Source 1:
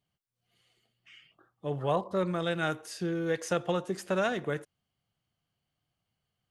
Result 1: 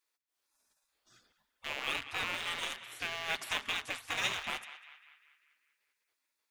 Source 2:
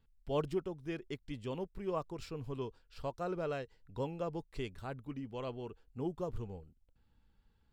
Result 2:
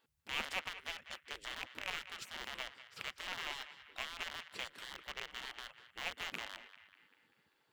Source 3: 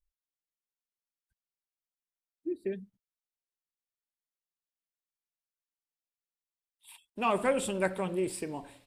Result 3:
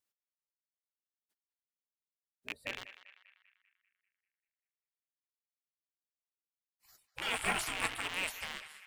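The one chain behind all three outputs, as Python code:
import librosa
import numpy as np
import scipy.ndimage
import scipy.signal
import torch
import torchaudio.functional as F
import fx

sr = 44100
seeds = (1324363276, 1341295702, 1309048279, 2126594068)

p1 = fx.rattle_buzz(x, sr, strikes_db=-46.0, level_db=-32.0)
p2 = fx.spec_gate(p1, sr, threshold_db=-20, keep='weak')
p3 = np.where(np.abs(p2) >= 10.0 ** (-38.5 / 20.0), p2, 0.0)
p4 = p2 + (p3 * 10.0 ** (-10.0 / 20.0))
p5 = fx.echo_banded(p4, sr, ms=196, feedback_pct=56, hz=1900.0, wet_db=-12)
y = p5 * 10.0 ** (6.5 / 20.0)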